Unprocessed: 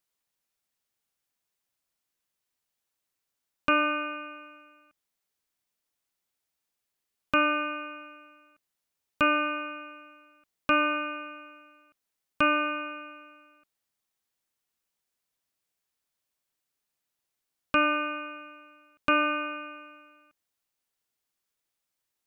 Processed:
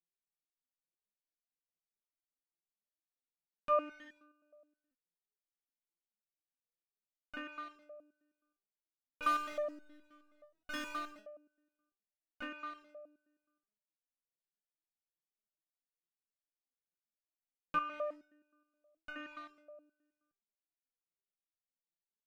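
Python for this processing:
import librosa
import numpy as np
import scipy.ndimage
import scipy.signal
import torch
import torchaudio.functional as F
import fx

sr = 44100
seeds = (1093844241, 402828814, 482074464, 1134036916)

y = fx.wiener(x, sr, points=41)
y = fx.power_curve(y, sr, exponent=0.7, at=(9.22, 11.19))
y = fx.resonator_held(y, sr, hz=9.5, low_hz=170.0, high_hz=740.0)
y = y * librosa.db_to_amplitude(2.5)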